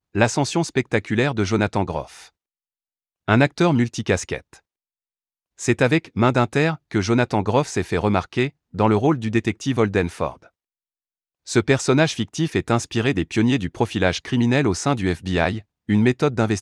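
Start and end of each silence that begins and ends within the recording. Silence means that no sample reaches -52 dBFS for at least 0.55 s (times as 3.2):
2.29–3.28
4.6–5.58
10.49–11.46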